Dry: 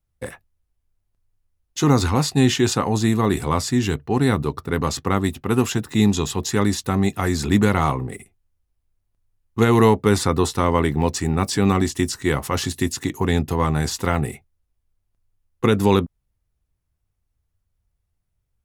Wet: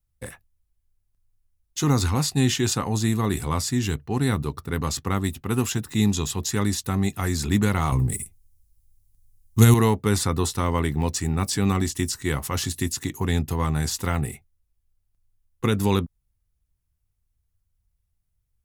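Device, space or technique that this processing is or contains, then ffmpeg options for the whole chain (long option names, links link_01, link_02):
smiley-face EQ: -filter_complex "[0:a]asettb=1/sr,asplit=3[link_01][link_02][link_03];[link_01]atrim=end=7.924[link_04];[link_02]atrim=start=7.92:end=9.74,asetpts=PTS-STARTPTS,afade=type=in:duration=0.004:curve=qsin,afade=type=out:start_time=1.816:duration=0.004:curve=qsin,bass=frequency=250:gain=10,treble=frequency=4000:gain=14[link_05];[link_03]atrim=start=9.736[link_06];[link_04][link_05]acrossfade=duration=0.004:curve1=hsin:curve2=qsin[link_07];[link_07][link_06]acrossfade=duration=0.004:curve1=qsin:curve2=hsin,lowshelf=frequency=110:gain=6,equalizer=frequency=510:width_type=o:width=1.9:gain=-3.5,highshelf=frequency=6300:gain=8,volume=-4.5dB"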